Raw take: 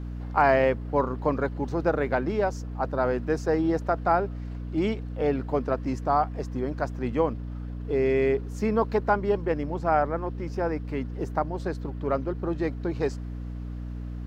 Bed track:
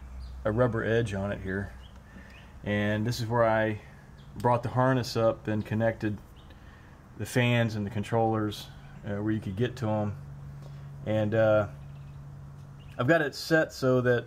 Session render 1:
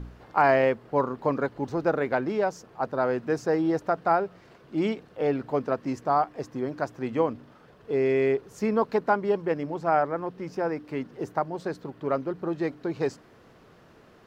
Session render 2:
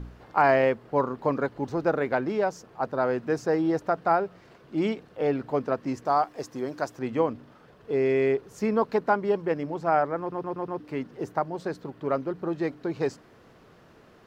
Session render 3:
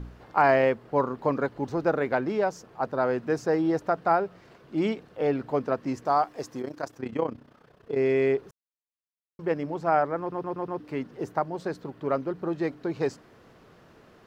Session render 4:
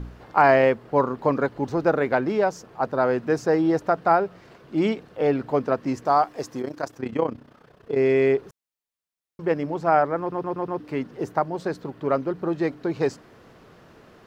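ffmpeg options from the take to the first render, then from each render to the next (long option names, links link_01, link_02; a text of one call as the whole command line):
ffmpeg -i in.wav -af "bandreject=frequency=60:width_type=h:width=4,bandreject=frequency=120:width_type=h:width=4,bandreject=frequency=180:width_type=h:width=4,bandreject=frequency=240:width_type=h:width=4,bandreject=frequency=300:width_type=h:width=4" out.wav
ffmpeg -i in.wav -filter_complex "[0:a]asettb=1/sr,asplit=3[link_01][link_02][link_03];[link_01]atrim=end=6.054[link_04];[link_02]atrim=start=6.05:end=6.99,asetpts=PTS-STARTPTS,afade=type=in:duration=0.004:curve=qsin,afade=type=out:start_time=0.936:duration=0.004:curve=qsin,bass=frequency=250:gain=-5,treble=frequency=4000:gain=8[link_05];[link_03]atrim=start=6.986[link_06];[link_04][link_05]acrossfade=duration=0.004:curve1=hsin:curve2=qsin[link_07];[link_07][link_06]acrossfade=duration=0.004:curve1=qsin:curve2=hsin,asplit=6[link_08][link_09][link_10][link_11][link_12][link_13];[link_08]atrim=end=10.322[link_14];[link_09]atrim=start=10.198:end=10.322[link_15];[link_10]atrim=start=10.198:end=10.322[link_16];[link_11]atrim=start=10.198:end=10.322[link_17];[link_12]atrim=start=10.198:end=10.322[link_18];[link_13]atrim=start=10.798[link_19];[link_14][link_15]acrossfade=duration=0.004:curve1=hsin:curve2=hsin[link_20];[link_20][link_16]acrossfade=duration=0.004:curve1=hsin:curve2=hsin[link_21];[link_21][link_17]acrossfade=duration=0.004:curve1=hsin:curve2=hsin[link_22];[link_22][link_18]acrossfade=duration=0.004:curve1=hsin:curve2=hsin[link_23];[link_23][link_19]acrossfade=duration=0.004:curve1=hsin:curve2=hsin" out.wav
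ffmpeg -i in.wav -filter_complex "[0:a]asplit=3[link_01][link_02][link_03];[link_01]afade=type=out:start_time=6.6:duration=0.02[link_04];[link_02]tremolo=f=31:d=0.788,afade=type=in:start_time=6.6:duration=0.02,afade=type=out:start_time=7.96:duration=0.02[link_05];[link_03]afade=type=in:start_time=7.96:duration=0.02[link_06];[link_04][link_05][link_06]amix=inputs=3:normalize=0,asplit=3[link_07][link_08][link_09];[link_07]atrim=end=8.51,asetpts=PTS-STARTPTS,afade=type=out:start_time=8.506:duration=0.004:curve=hsin[link_10];[link_08]atrim=start=8.51:end=9.39,asetpts=PTS-STARTPTS,volume=0[link_11];[link_09]atrim=start=9.39,asetpts=PTS-STARTPTS,afade=type=in:duration=0.004:curve=hsin[link_12];[link_10][link_11][link_12]concat=n=3:v=0:a=1" out.wav
ffmpeg -i in.wav -af "volume=4dB" out.wav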